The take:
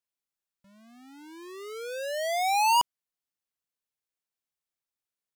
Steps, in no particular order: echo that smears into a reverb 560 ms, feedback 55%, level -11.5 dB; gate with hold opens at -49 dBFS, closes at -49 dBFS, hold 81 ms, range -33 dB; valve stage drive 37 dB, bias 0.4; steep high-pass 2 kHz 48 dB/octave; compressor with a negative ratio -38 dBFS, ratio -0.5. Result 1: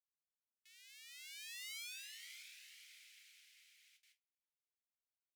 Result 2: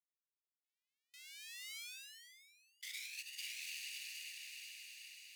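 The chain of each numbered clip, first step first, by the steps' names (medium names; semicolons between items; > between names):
compressor with a negative ratio > echo that smears into a reverb > gate with hold > valve stage > steep high-pass; gate with hold > echo that smears into a reverb > compressor with a negative ratio > valve stage > steep high-pass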